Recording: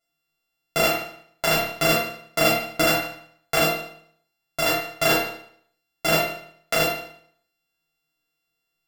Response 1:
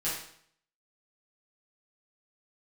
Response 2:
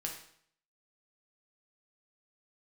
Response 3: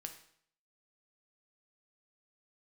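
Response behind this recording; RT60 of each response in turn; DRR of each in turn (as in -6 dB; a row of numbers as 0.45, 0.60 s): 1; 0.60, 0.60, 0.60 s; -10.0, 0.0, 5.0 dB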